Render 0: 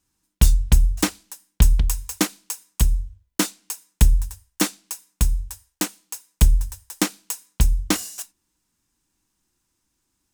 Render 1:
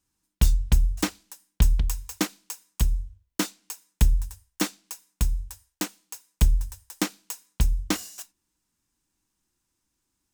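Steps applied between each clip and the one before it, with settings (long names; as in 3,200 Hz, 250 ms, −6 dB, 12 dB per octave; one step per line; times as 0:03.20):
dynamic equaliser 9,900 Hz, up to −5 dB, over −41 dBFS, Q 1.3
level −4.5 dB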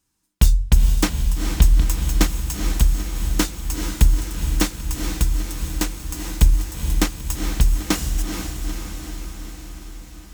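feedback delay with all-pass diffusion 454 ms, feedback 65%, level −6 dB
level +5 dB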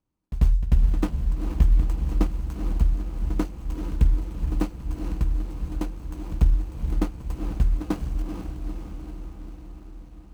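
running median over 25 samples
echo ahead of the sound 92 ms −13 dB
level −4 dB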